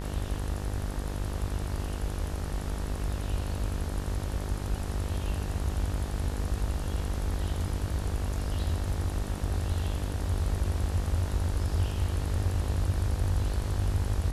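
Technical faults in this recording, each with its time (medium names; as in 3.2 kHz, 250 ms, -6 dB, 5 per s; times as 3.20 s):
buzz 50 Hz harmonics 38 -34 dBFS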